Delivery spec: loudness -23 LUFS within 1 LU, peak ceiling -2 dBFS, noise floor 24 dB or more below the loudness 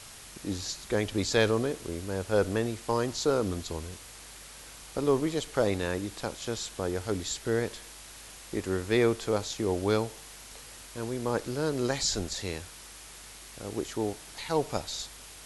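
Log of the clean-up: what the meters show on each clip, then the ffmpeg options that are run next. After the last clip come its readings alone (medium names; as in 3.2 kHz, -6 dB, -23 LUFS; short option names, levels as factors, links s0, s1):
noise floor -48 dBFS; noise floor target -55 dBFS; loudness -30.5 LUFS; peak level -11.0 dBFS; loudness target -23.0 LUFS
-> -af "afftdn=nr=7:nf=-48"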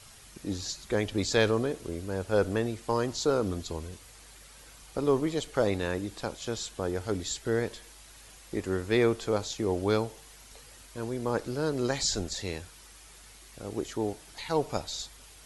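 noise floor -52 dBFS; noise floor target -55 dBFS
-> -af "afftdn=nr=6:nf=-52"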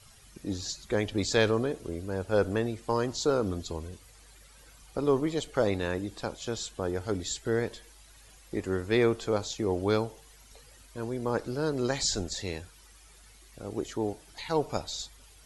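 noise floor -55 dBFS; loudness -30.5 LUFS; peak level -11.0 dBFS; loudness target -23.0 LUFS
-> -af "volume=2.37"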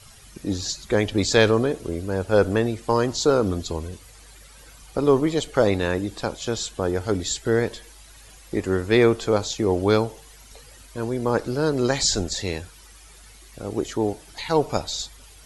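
loudness -23.0 LUFS; peak level -3.5 dBFS; noise floor -48 dBFS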